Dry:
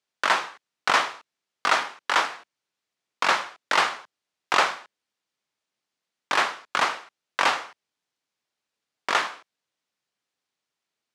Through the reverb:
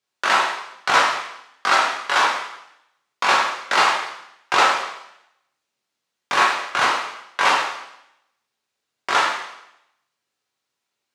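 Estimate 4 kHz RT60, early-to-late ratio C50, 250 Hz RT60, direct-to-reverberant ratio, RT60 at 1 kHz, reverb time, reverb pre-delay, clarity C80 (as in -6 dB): 0.80 s, 3.0 dB, 0.85 s, -4.0 dB, 0.80 s, 0.80 s, 3 ms, 6.0 dB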